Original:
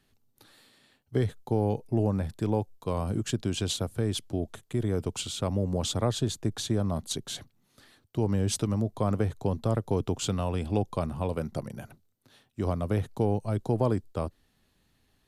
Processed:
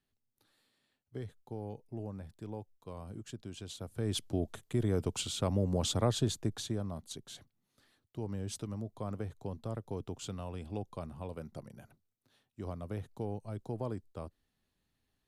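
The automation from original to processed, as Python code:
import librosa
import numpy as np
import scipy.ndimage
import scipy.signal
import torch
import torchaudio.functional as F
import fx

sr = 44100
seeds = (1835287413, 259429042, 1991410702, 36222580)

y = fx.gain(x, sr, db=fx.line((3.72, -15.5), (4.17, -2.5), (6.31, -2.5), (7.01, -12.0)))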